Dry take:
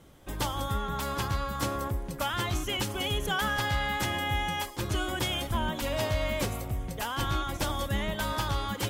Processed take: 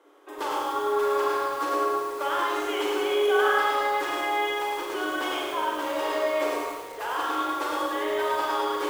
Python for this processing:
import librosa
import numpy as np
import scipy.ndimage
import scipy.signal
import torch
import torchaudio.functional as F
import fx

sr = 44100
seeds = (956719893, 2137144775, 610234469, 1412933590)

y = scipy.signal.sosfilt(scipy.signal.cheby1(6, 6, 290.0, 'highpass', fs=sr, output='sos'), x)
y = fx.high_shelf(y, sr, hz=2800.0, db=-11.0)
y = fx.rev_schroeder(y, sr, rt60_s=1.2, comb_ms=30, drr_db=-2.0)
y = fx.echo_crushed(y, sr, ms=106, feedback_pct=35, bits=8, wet_db=-3.0)
y = F.gain(torch.from_numpy(y), 4.5).numpy()